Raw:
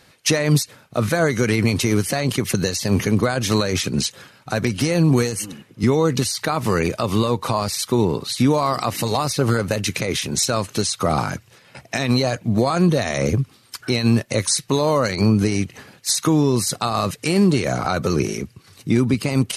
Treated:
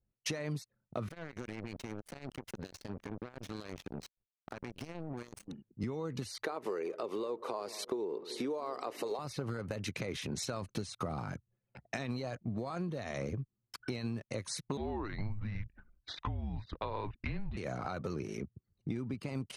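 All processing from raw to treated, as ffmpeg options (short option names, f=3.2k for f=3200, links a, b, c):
-filter_complex "[0:a]asettb=1/sr,asplit=3[a][b][c];[a]atrim=end=1.084[d];[b]atrim=start=1.08:end=5.48,asetpts=PTS-STARTPTS,afade=t=in:d=0.004:c=qsin,afade=t=out:st=4.396:d=0.004:c=qsin,acompressor=threshold=-30dB:ratio=10:attack=3.2:release=140:knee=1:detection=peak,acrusher=bits=4:mix=0:aa=0.5[e];[c]atrim=start=5.476[f];[d][e]acrossfade=d=0.004:c1=hsin:c2=qsin[g];[g][f]acrossfade=d=0.004:c1=qsin:c2=hsin,asettb=1/sr,asplit=3[h][i][j];[h]atrim=end=6.444[k];[i]atrim=start=6.44:end=9.19,asetpts=PTS-STARTPTS,afade=t=in:d=0.004:c=qsin,afade=t=out:st=2.746:d=0.004:c=qsin,highpass=f=400:t=q:w=3.1,asplit=2[l][m];[m]adelay=187,lowpass=f=1.1k:p=1,volume=-18.5dB,asplit=2[n][o];[o]adelay=187,lowpass=f=1.1k:p=1,volume=0.49,asplit=2[p][q];[q]adelay=187,lowpass=f=1.1k:p=1,volume=0.49,asplit=2[r][s];[s]adelay=187,lowpass=f=1.1k:p=1,volume=0.49[t];[l][n][p][r][t]amix=inputs=5:normalize=0,atrim=end_sample=121275[u];[j]atrim=start=9.186[v];[k][u]acrossfade=d=0.004:c1=hsin:c2=qsin[w];[w][v]acrossfade=d=0.004:c1=qsin:c2=hsin,asettb=1/sr,asplit=3[x][y][z];[x]atrim=end=10.624[aa];[y]atrim=start=10.62:end=11.33,asetpts=PTS-STARTPTS,afade=t=in:d=0.004:c=qsin,afade=t=out:st=0.706:d=0.004:c=qsin,agate=range=-33dB:threshold=-40dB:ratio=3:release=100:detection=peak,lowshelf=f=280:g=5.5[ab];[z]atrim=start=11.326[ac];[aa][ab]acrossfade=d=0.004:c1=hsin:c2=qsin[ad];[ad][ac]acrossfade=d=0.004:c1=qsin:c2=hsin,asettb=1/sr,asplit=3[ae][af][ag];[ae]atrim=end=14.774[ah];[af]atrim=start=14.77:end=17.57,asetpts=PTS-STARTPTS,afade=t=in:d=0.004:c=qsin,afade=t=out:st=2.796:d=0.004:c=qsin,lowpass=f=3.6k:w=0.5412,lowpass=f=3.6k:w=1.3066,afreqshift=-210[ai];[ag]atrim=start=17.566[aj];[ah][ai]acrossfade=d=0.004:c1=hsin:c2=qsin[ak];[ak][aj]acrossfade=d=0.004:c1=qsin:c2=hsin,anlmdn=6.31,highshelf=f=4.4k:g=-11.5,acompressor=threshold=-26dB:ratio=10,volume=-8dB"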